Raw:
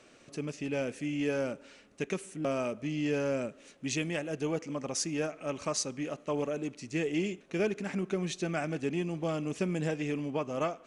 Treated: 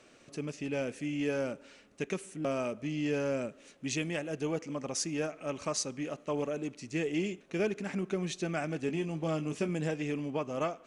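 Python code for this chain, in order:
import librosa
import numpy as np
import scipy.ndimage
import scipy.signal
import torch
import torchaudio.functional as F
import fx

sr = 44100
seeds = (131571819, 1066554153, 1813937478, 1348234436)

y = fx.doubler(x, sr, ms=19.0, db=-8.5, at=(8.86, 9.69))
y = y * 10.0 ** (-1.0 / 20.0)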